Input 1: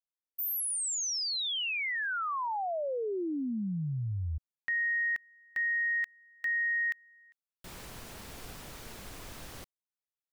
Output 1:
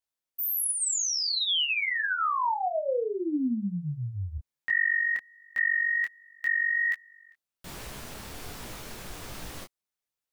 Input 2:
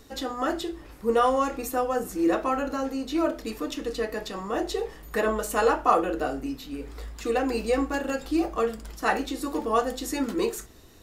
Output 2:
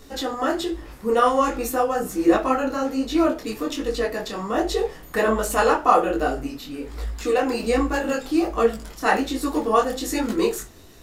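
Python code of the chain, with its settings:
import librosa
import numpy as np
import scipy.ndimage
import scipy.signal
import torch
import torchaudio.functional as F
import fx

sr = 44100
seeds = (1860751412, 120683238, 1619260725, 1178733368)

y = fx.detune_double(x, sr, cents=44)
y = y * librosa.db_to_amplitude(8.5)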